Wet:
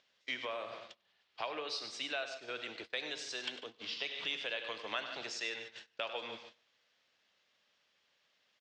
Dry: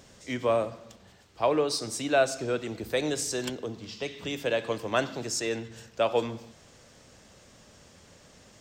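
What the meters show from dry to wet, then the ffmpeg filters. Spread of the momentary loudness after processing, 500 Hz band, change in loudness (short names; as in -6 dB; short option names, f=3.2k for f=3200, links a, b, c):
9 LU, -17.0 dB, -10.5 dB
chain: -filter_complex "[0:a]asplit=2[a][b];[b]aecho=0:1:143|286|429:0.168|0.047|0.0132[c];[a][c]amix=inputs=2:normalize=0,acompressor=threshold=-36dB:ratio=3,aderivative,acompressor=mode=upward:threshold=-48dB:ratio=2.5,lowpass=f=3.6k:w=0.5412,lowpass=f=3.6k:w=1.3066,asplit=2[d][e];[e]aecho=0:1:76|99:0.106|0.282[f];[d][f]amix=inputs=2:normalize=0,agate=range=-24dB:threshold=-59dB:ratio=16:detection=peak,volume=14dB"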